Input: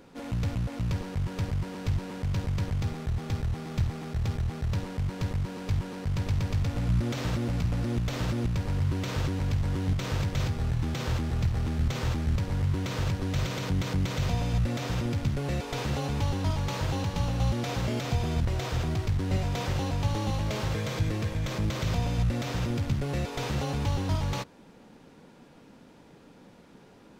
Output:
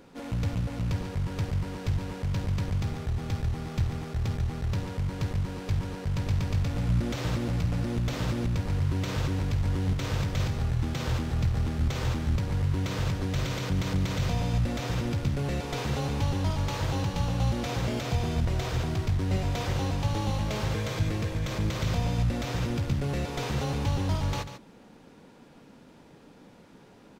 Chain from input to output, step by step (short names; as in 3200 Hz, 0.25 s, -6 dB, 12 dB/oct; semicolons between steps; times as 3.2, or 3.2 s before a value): echo 0.143 s -10.5 dB